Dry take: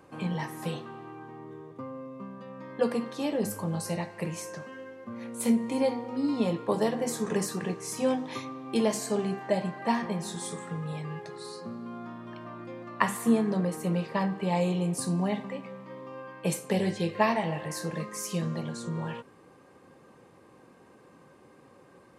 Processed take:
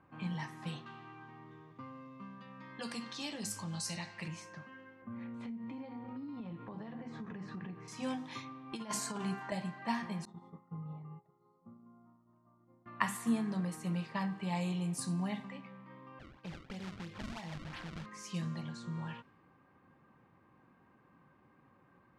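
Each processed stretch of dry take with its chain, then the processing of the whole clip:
0:00.86–0:04.28: parametric band 5,900 Hz +13 dB 2.4 octaves + downward compressor 1.5 to 1, threshold −34 dBFS
0:05.02–0:07.88: low-pass filter 2,500 Hz + low-shelf EQ 470 Hz +5.5 dB + downward compressor 12 to 1, threshold −31 dBFS
0:08.72–0:09.52: hollow resonant body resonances 1,000/1,400 Hz, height 14 dB + compressor whose output falls as the input rises −28 dBFS, ratio −0.5 + high-pass filter 100 Hz
0:10.25–0:12.86: downward expander −32 dBFS + Savitzky-Golay smoothing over 65 samples
0:16.19–0:18.06: downward expander −42 dBFS + downward compressor 4 to 1, threshold −33 dBFS + sample-and-hold swept by an LFO 30×, swing 160% 3 Hz
whole clip: low-pass that shuts in the quiet parts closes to 1,800 Hz, open at −25.5 dBFS; parametric band 470 Hz −12.5 dB 1.1 octaves; level −5 dB

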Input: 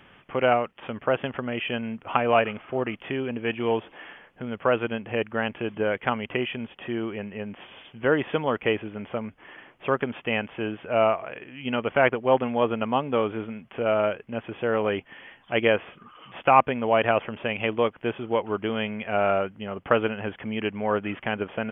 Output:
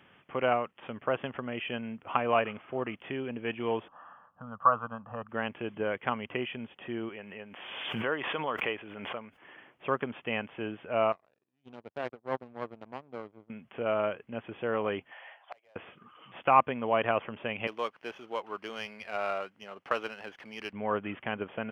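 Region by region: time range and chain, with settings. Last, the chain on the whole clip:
0:03.88–0:05.29: low-pass filter 1,700 Hz + parametric band 1,200 Hz +14.5 dB 0.45 octaves + phaser with its sweep stopped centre 910 Hz, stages 4
0:07.09–0:09.42: low-shelf EQ 400 Hz −11.5 dB + background raised ahead of every attack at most 35 dB per second
0:11.12–0:13.50: parametric band 2,300 Hz −13.5 dB 2 octaves + power curve on the samples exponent 2
0:15.11–0:15.76: four-pole ladder high-pass 590 Hz, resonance 60% + mid-hump overdrive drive 20 dB, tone 2,700 Hz, clips at −17.5 dBFS + gate with flip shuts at −26 dBFS, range −32 dB
0:17.67–0:20.73: high-pass filter 810 Hz 6 dB per octave + windowed peak hold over 3 samples
whole clip: high-pass filter 80 Hz; dynamic equaliser 1,100 Hz, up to +5 dB, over −43 dBFS, Q 5; level −6.5 dB

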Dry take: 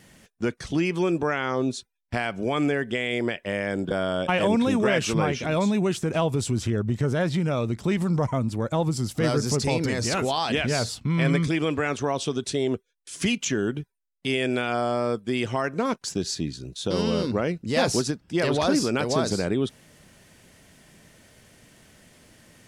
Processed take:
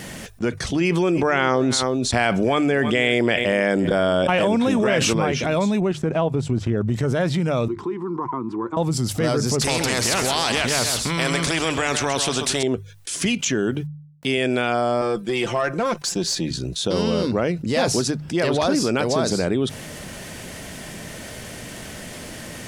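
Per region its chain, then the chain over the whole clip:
0:00.81–0:05.13: single-tap delay 321 ms −19 dB + envelope flattener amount 70%
0:05.80–0:06.81: low-pass filter 1,800 Hz 6 dB per octave + transient designer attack +2 dB, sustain −9 dB
0:07.68–0:08.77: pair of resonant band-passes 600 Hz, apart 1.5 octaves + multiband upward and downward compressor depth 100%
0:09.61–0:12.63: single-tap delay 132 ms −14 dB + every bin compressed towards the loudest bin 2 to 1
0:13.69–0:14.38: high-pass filter 69 Hz + bit-depth reduction 12 bits, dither none
0:15.01–0:16.51: high-pass filter 190 Hz 6 dB per octave + comb filter 5.8 ms, depth 56% + tube saturation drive 17 dB, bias 0.25
whole clip: parametric band 640 Hz +2 dB; mains-hum notches 50/100/150 Hz; envelope flattener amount 50%

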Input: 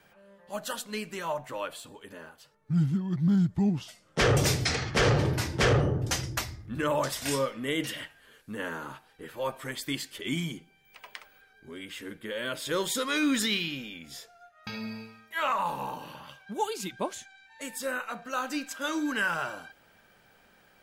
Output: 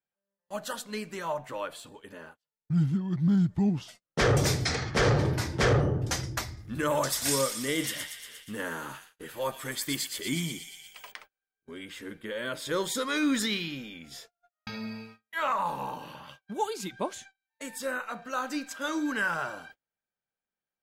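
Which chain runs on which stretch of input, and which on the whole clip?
0:06.57–0:11.12: high-shelf EQ 5,100 Hz +11 dB + delay with a high-pass on its return 118 ms, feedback 66%, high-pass 2,500 Hz, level −5.5 dB
whole clip: high-shelf EQ 9,200 Hz −4.5 dB; noise gate −49 dBFS, range −35 dB; dynamic equaliser 2,800 Hz, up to −6 dB, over −49 dBFS, Q 3.5

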